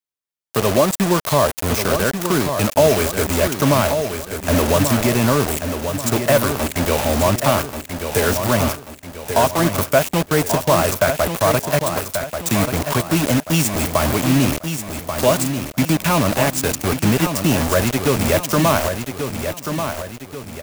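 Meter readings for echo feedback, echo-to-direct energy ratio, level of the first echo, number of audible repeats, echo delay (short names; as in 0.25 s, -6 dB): 43%, -6.5 dB, -7.5 dB, 4, 1.136 s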